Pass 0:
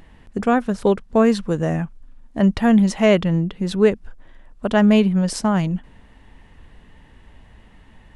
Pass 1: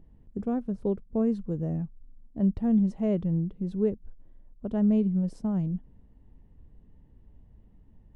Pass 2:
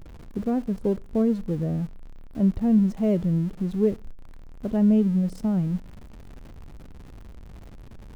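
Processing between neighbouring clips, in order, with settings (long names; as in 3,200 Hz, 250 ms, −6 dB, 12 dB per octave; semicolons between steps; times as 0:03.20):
drawn EQ curve 140 Hz 0 dB, 420 Hz −5 dB, 1,700 Hz −23 dB; level −6.5 dB
converter with a step at zero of −43.5 dBFS; on a send at −21 dB: convolution reverb RT60 0.35 s, pre-delay 12 ms; on the sum: level +3.5 dB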